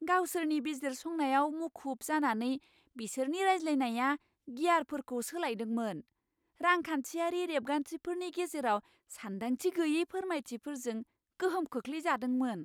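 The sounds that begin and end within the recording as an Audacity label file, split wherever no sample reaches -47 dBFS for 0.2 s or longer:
2.960000	4.160000	sound
4.480000	6.010000	sound
6.610000	8.800000	sound
9.110000	11.030000	sound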